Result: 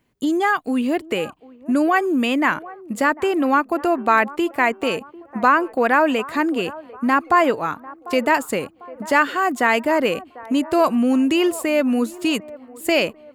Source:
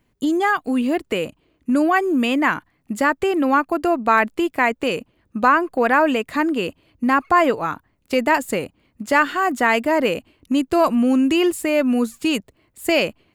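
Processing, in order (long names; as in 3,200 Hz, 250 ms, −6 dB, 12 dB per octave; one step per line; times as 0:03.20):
low-shelf EQ 66 Hz −11 dB
delay with a band-pass on its return 747 ms, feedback 43%, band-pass 670 Hz, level −17.5 dB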